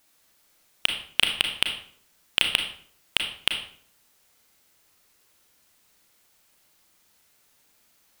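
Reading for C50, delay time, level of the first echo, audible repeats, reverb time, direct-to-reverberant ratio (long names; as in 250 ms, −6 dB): 7.0 dB, no echo audible, no echo audible, no echo audible, 0.55 s, 3.5 dB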